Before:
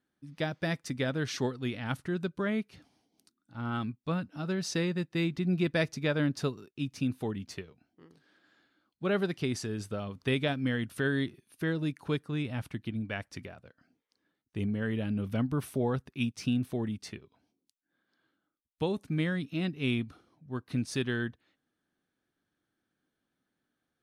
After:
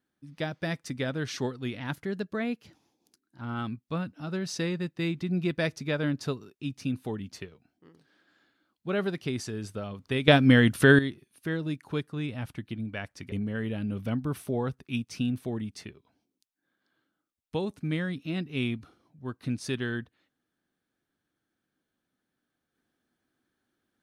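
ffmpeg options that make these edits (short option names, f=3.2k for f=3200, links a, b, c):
-filter_complex "[0:a]asplit=6[a][b][c][d][e][f];[a]atrim=end=1.804[g];[b]atrim=start=1.8:end=3.57,asetpts=PTS-STARTPTS,asetrate=48510,aresample=44100[h];[c]atrim=start=3.566:end=10.442[i];[d]atrim=start=10.438:end=11.152,asetpts=PTS-STARTPTS,volume=12dB[j];[e]atrim=start=11.148:end=13.482[k];[f]atrim=start=14.588[l];[g][h]acrossfade=d=0.004:c1=hsin:c2=hsin[m];[m][i]acrossfade=d=0.004:c1=hsin:c2=hsin[n];[n][j]acrossfade=d=0.004:c1=hsin:c2=hsin[o];[o][k]acrossfade=d=0.004:c1=hsin:c2=hsin[p];[p][l]acrossfade=d=0.004:c1=hsin:c2=hsin"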